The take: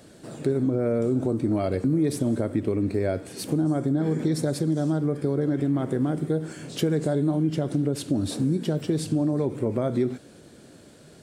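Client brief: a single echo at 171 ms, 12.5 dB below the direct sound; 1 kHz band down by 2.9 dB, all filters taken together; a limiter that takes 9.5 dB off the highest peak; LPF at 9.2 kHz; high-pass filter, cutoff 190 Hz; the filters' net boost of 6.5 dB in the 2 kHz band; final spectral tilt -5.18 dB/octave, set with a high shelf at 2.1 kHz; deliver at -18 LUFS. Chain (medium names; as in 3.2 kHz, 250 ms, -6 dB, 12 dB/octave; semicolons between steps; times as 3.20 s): high-pass 190 Hz; low-pass 9.2 kHz; peaking EQ 1 kHz -8.5 dB; peaking EQ 2 kHz +8 dB; treble shelf 2.1 kHz +6 dB; peak limiter -22 dBFS; delay 171 ms -12.5 dB; trim +12.5 dB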